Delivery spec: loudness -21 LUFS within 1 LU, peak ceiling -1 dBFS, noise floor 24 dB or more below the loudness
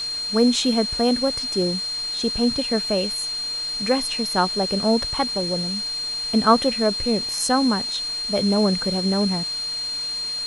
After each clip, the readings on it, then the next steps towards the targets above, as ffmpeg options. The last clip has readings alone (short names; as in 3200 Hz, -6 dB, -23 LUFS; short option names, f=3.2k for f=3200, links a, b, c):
steady tone 4200 Hz; tone level -25 dBFS; noise floor -28 dBFS; noise floor target -46 dBFS; loudness -21.5 LUFS; peak -2.5 dBFS; loudness target -21.0 LUFS
-> -af "bandreject=f=4.2k:w=30"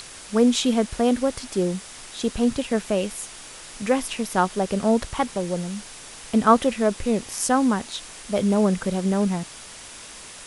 steady tone none; noise floor -41 dBFS; noise floor target -47 dBFS
-> -af "afftdn=nr=6:nf=-41"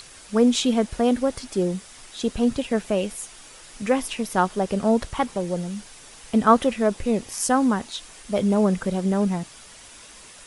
noise floor -46 dBFS; noise floor target -47 dBFS
-> -af "afftdn=nr=6:nf=-46"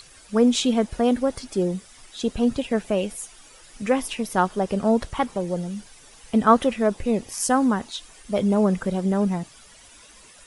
noise floor -50 dBFS; loudness -23.0 LUFS; peak -3.5 dBFS; loudness target -21.0 LUFS
-> -af "volume=2dB"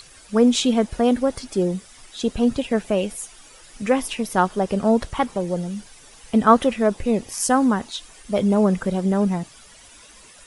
loudness -21.0 LUFS; peak -1.5 dBFS; noise floor -48 dBFS